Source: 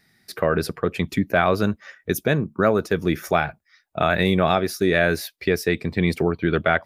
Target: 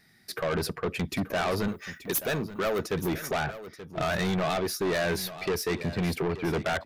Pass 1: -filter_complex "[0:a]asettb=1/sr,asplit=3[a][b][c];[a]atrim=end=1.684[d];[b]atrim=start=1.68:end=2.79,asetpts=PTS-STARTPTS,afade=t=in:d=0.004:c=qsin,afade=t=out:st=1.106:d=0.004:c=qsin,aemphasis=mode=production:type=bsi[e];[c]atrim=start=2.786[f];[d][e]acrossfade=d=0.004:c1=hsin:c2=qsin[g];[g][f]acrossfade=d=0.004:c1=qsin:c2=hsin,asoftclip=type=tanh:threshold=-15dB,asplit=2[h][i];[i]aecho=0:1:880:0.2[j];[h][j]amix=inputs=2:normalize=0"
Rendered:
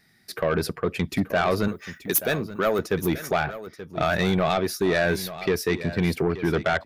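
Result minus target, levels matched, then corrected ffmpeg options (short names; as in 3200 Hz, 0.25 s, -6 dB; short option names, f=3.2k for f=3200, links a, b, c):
soft clip: distortion -6 dB
-filter_complex "[0:a]asettb=1/sr,asplit=3[a][b][c];[a]atrim=end=1.684[d];[b]atrim=start=1.68:end=2.79,asetpts=PTS-STARTPTS,afade=t=in:d=0.004:c=qsin,afade=t=out:st=1.106:d=0.004:c=qsin,aemphasis=mode=production:type=bsi[e];[c]atrim=start=2.786[f];[d][e]acrossfade=d=0.004:c1=hsin:c2=qsin[g];[g][f]acrossfade=d=0.004:c1=qsin:c2=hsin,asoftclip=type=tanh:threshold=-24dB,asplit=2[h][i];[i]aecho=0:1:880:0.2[j];[h][j]amix=inputs=2:normalize=0"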